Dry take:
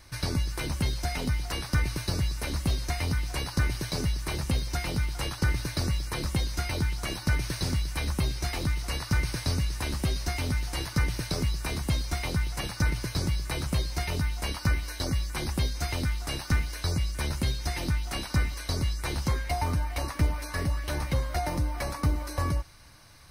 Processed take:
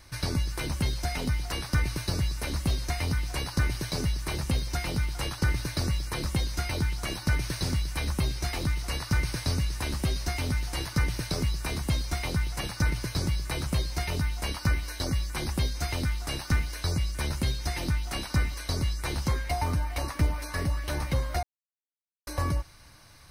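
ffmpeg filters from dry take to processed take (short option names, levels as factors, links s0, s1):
-filter_complex "[0:a]asplit=3[s0][s1][s2];[s0]atrim=end=21.43,asetpts=PTS-STARTPTS,afade=t=out:st=21.426:d=0.004:c=hsin[s3];[s1]atrim=start=21.43:end=22.27,asetpts=PTS-STARTPTS,volume=0[s4];[s2]atrim=start=22.27,asetpts=PTS-STARTPTS,afade=t=in:d=0.004:c=hsin[s5];[s3][s4][s5]concat=n=3:v=0:a=1"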